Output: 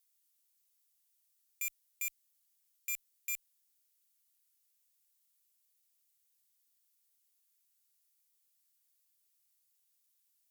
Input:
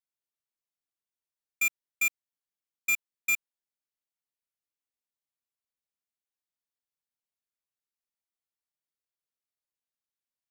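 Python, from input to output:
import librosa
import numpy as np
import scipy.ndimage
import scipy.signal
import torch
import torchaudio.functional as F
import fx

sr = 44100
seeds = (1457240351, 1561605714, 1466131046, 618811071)

y = fx.tube_stage(x, sr, drive_db=48.0, bias=0.55)
y = librosa.effects.preemphasis(y, coef=0.97, zi=[0.0])
y = y * 10.0 ** (18.0 / 20.0)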